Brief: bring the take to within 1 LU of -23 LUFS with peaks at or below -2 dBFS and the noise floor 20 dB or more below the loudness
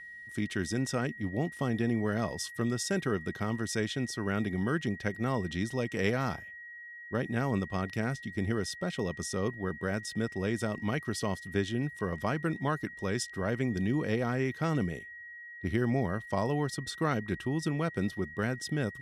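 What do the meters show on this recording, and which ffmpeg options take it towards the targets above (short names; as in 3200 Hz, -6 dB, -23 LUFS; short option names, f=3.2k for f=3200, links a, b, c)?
steady tone 1900 Hz; tone level -44 dBFS; loudness -32.5 LUFS; peak -14.0 dBFS; loudness target -23.0 LUFS
-> -af "bandreject=f=1.9k:w=30"
-af "volume=9.5dB"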